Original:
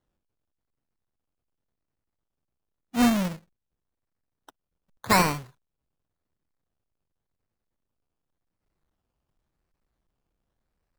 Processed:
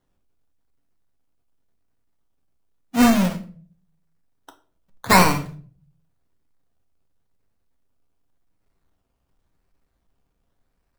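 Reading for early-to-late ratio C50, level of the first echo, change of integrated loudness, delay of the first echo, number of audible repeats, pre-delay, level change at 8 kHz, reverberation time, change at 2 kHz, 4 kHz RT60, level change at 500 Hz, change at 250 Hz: 13.0 dB, none, +6.0 dB, none, none, 4 ms, +6.0 dB, 0.45 s, +6.5 dB, 0.35 s, +6.5 dB, +6.0 dB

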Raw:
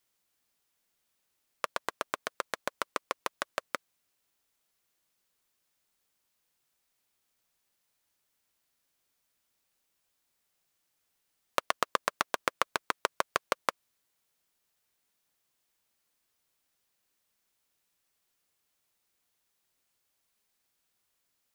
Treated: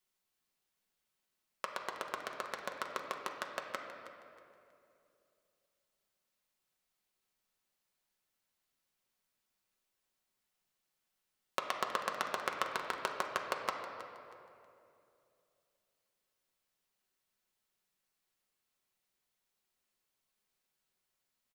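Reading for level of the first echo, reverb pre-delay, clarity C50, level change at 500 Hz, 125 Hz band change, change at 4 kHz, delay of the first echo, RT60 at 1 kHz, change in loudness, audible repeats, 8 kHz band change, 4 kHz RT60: -14.0 dB, 5 ms, 4.0 dB, -4.5 dB, -4.0 dB, -5.5 dB, 0.319 s, 2.4 s, -5.0 dB, 2, -7.0 dB, 1.8 s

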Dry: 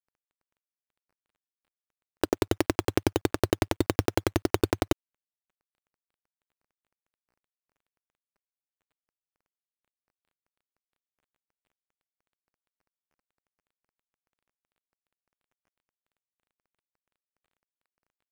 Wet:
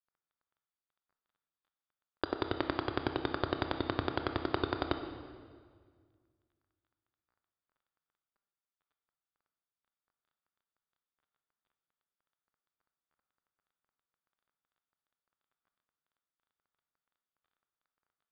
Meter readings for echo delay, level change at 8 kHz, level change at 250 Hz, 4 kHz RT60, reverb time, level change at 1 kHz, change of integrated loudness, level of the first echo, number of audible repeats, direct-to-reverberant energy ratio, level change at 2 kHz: none, under -35 dB, -8.0 dB, 1.5 s, 1.8 s, -3.0 dB, -7.5 dB, none, none, 6.5 dB, -4.0 dB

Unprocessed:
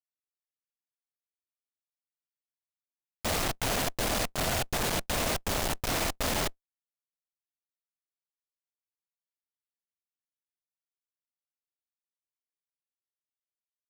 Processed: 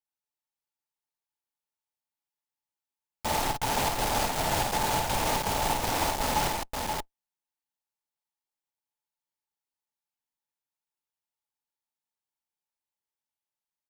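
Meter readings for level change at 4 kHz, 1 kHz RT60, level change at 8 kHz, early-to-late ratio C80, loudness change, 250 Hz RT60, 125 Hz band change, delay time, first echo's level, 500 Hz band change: +0.5 dB, none, +0.5 dB, none, +1.5 dB, none, +1.0 dB, 52 ms, -5.0 dB, +1.5 dB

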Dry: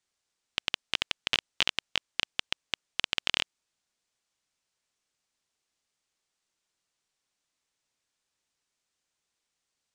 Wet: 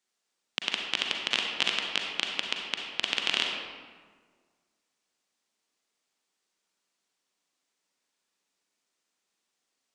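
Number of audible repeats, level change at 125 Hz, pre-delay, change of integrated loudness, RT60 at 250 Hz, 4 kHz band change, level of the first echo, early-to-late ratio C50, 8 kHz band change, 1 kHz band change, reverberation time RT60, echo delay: none, -4.0 dB, 36 ms, +2.0 dB, 1.8 s, +2.0 dB, none, 2.0 dB, +1.5 dB, +3.5 dB, 1.6 s, none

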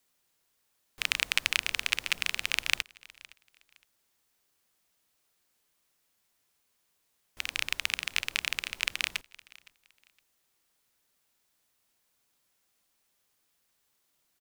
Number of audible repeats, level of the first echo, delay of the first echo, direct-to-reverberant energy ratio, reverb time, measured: 1, -23.0 dB, 0.514 s, none, none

